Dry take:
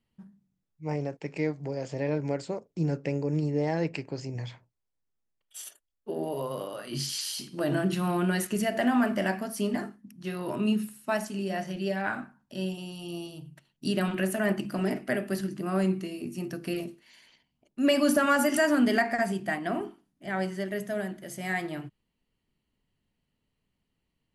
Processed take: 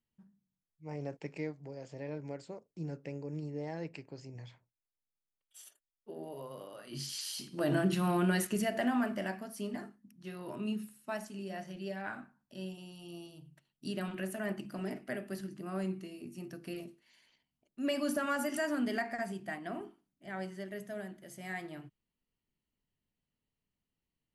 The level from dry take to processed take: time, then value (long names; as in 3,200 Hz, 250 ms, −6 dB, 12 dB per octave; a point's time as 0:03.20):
0:00.91 −11.5 dB
0:01.15 −4 dB
0:01.58 −12 dB
0:06.60 −12 dB
0:07.72 −2.5 dB
0:08.36 −2.5 dB
0:09.39 −10 dB